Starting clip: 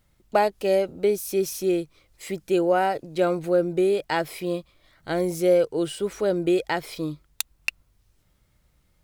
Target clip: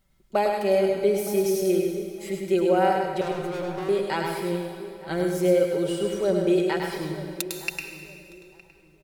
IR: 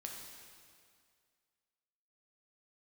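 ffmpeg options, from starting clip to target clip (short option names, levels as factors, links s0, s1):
-filter_complex "[0:a]aecho=1:1:5.2:0.52,asettb=1/sr,asplit=3[s0][s1][s2];[s0]atrim=end=3.214[s3];[s1]atrim=start=3.21:end=3.89,asetpts=PTS-STARTPTS,afade=t=in:d=0.004:c=qsin,afade=t=out:st=0.676:d=0.004:c=qsin,volume=25.1,asoftclip=hard,volume=0.0398[s4];[s2]atrim=start=3.886[s5];[s3][s4]acrossfade=d=0.004:c1=hsin:c2=qsin[s6];[s6][s5]acrossfade=d=0.004:c1=qsin:c2=hsin,asplit=2[s7][s8];[s8]adelay=913,lowpass=f=1200:p=1,volume=0.168,asplit=2[s9][s10];[s10]adelay=913,lowpass=f=1200:p=1,volume=0.25,asplit=2[s11][s12];[s12]adelay=913,lowpass=f=1200:p=1,volume=0.25[s13];[s7][s9][s11][s13]amix=inputs=4:normalize=0,asplit=2[s14][s15];[1:a]atrim=start_sample=2205,adelay=103[s16];[s15][s16]afir=irnorm=-1:irlink=0,volume=1.12[s17];[s14][s17]amix=inputs=2:normalize=0,volume=0.631"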